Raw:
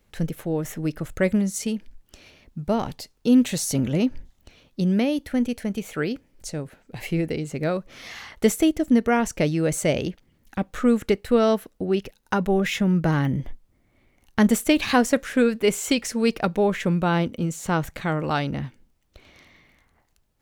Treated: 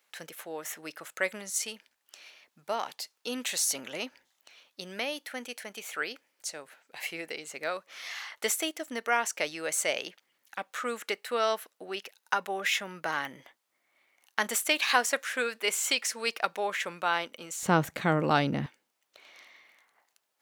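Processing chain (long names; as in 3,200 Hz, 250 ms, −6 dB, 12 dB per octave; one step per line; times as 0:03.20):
high-pass filter 920 Hz 12 dB per octave, from 0:17.63 160 Hz, from 0:18.66 690 Hz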